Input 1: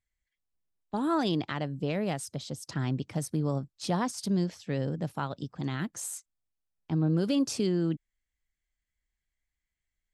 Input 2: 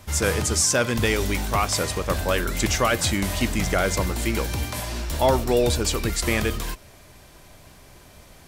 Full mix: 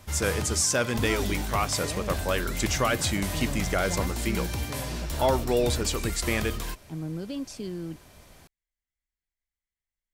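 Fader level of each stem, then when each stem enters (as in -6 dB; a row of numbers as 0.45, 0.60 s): -7.5, -4.0 dB; 0.00, 0.00 s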